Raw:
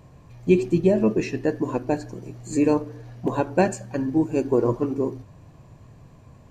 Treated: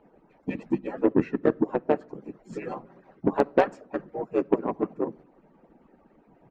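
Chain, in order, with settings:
harmonic-percussive split with one part muted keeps percussive
three-way crossover with the lows and the highs turned down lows −16 dB, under 160 Hz, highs −24 dB, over 2,300 Hz
in parallel at +1.5 dB: downward compressor 6 to 1, threshold −34 dBFS, peak gain reduction 16.5 dB
on the sum: pitch-shifted copies added −5 semitones −3 dB
harmonic generator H 7 −25 dB, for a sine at −4 dBFS
on a send at −23 dB: convolution reverb RT60 0.80 s, pre-delay 6 ms
on the sum: level −1.5 dB

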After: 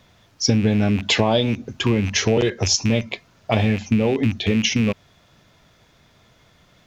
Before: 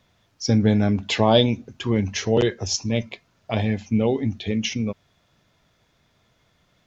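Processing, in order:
loose part that buzzes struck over −30 dBFS, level −24 dBFS
downward compressor 6 to 1, threshold −23 dBFS, peak gain reduction 12 dB
level +8.5 dB

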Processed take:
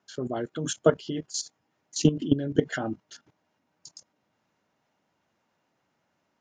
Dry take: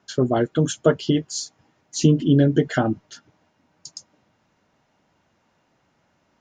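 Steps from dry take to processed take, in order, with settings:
high-pass filter 150 Hz 6 dB per octave
output level in coarse steps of 15 dB

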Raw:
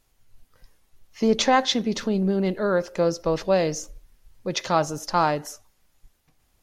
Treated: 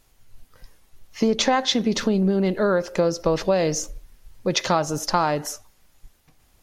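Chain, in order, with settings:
downward compressor 6 to 1, threshold −23 dBFS, peak gain reduction 9.5 dB
level +6.5 dB

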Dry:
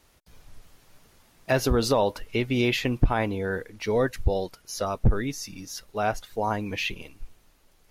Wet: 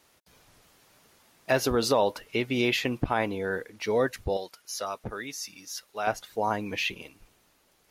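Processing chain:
high-pass filter 250 Hz 6 dB per octave, from 0:04.37 1,000 Hz, from 0:06.07 200 Hz

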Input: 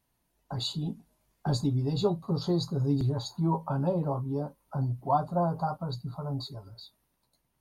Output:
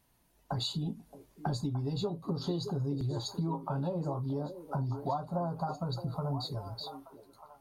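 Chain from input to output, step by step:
downward compressor, threshold −37 dBFS, peak gain reduction 15.5 dB
on a send: echo through a band-pass that steps 621 ms, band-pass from 370 Hz, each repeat 1.4 octaves, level −6.5 dB
on the sum: level +5.5 dB

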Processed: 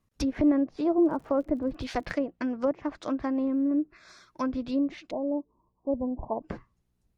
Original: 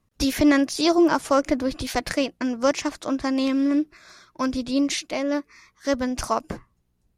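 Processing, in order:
treble cut that deepens with the level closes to 670 Hz, closed at −18.5 dBFS
0:01.03–0:02.12: surface crackle 55 per second −41 dBFS
0:05.11–0:06.42: Butterworth low-pass 1,000 Hz 96 dB per octave
level −4.5 dB

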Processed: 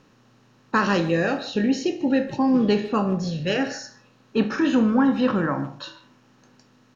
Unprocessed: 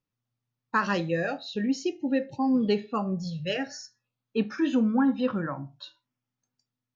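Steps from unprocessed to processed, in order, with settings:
compressor on every frequency bin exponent 0.6
low-shelf EQ 100 Hz +7.5 dB
far-end echo of a speakerphone 150 ms, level −16 dB
level +2 dB

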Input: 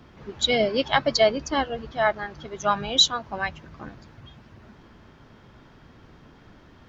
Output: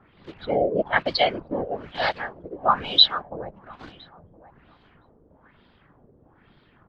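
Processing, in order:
0:01.51–0:02.61: one scale factor per block 3 bits
downsampling to 11,025 Hz
in parallel at −4.5 dB: bit reduction 6 bits
on the sum: random phases in short frames
on a send: repeating echo 1,015 ms, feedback 18%, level −21 dB
on the sum: auto-filter low-pass sine 1.1 Hz 470–4,000 Hz
level −7.5 dB

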